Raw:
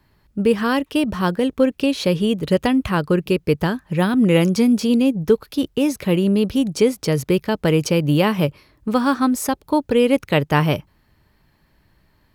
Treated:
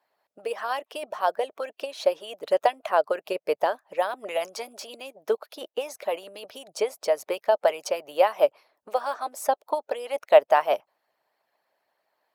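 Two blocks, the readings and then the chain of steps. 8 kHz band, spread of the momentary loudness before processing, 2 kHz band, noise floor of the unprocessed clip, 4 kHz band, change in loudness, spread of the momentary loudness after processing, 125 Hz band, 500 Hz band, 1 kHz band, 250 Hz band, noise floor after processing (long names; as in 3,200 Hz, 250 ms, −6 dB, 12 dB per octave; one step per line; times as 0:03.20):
−9.0 dB, 6 LU, −8.0 dB, −61 dBFS, −9.5 dB, −7.5 dB, 14 LU, below −40 dB, −4.0 dB, −0.5 dB, −28.5 dB, −83 dBFS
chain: high-pass with resonance 630 Hz, resonance Q 5.9
harmonic and percussive parts rebalanced harmonic −16 dB
dynamic equaliser 830 Hz, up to +4 dB, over −31 dBFS, Q 0.93
level −8 dB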